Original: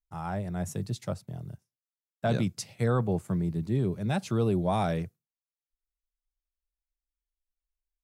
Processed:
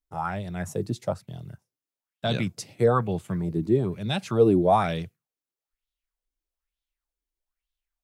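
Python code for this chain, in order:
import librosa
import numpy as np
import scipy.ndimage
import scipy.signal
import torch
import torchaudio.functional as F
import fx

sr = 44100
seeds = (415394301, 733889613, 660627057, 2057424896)

y = fx.bell_lfo(x, sr, hz=1.1, low_hz=290.0, high_hz=3600.0, db=14)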